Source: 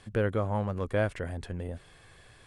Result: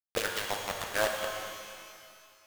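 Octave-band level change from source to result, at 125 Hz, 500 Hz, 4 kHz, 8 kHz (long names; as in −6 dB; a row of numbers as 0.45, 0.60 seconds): −19.5, −3.5, +14.5, +18.5 decibels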